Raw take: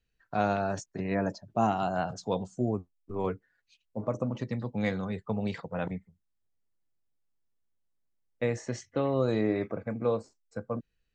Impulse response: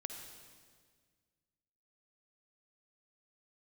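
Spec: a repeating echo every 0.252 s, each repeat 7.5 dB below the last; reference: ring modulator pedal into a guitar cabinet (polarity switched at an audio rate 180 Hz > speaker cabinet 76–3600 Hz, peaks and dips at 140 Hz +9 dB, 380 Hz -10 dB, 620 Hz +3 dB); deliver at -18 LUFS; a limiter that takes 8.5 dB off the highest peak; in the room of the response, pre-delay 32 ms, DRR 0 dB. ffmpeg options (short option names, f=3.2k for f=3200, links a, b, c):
-filter_complex "[0:a]alimiter=limit=-22.5dB:level=0:latency=1,aecho=1:1:252|504|756|1008|1260:0.422|0.177|0.0744|0.0312|0.0131,asplit=2[a][b];[1:a]atrim=start_sample=2205,adelay=32[c];[b][c]afir=irnorm=-1:irlink=0,volume=2dB[d];[a][d]amix=inputs=2:normalize=0,aeval=exprs='val(0)*sgn(sin(2*PI*180*n/s))':c=same,highpass=76,equalizer=f=140:t=q:w=4:g=9,equalizer=f=380:t=q:w=4:g=-10,equalizer=f=620:t=q:w=4:g=3,lowpass=f=3.6k:w=0.5412,lowpass=f=3.6k:w=1.3066,volume=14dB"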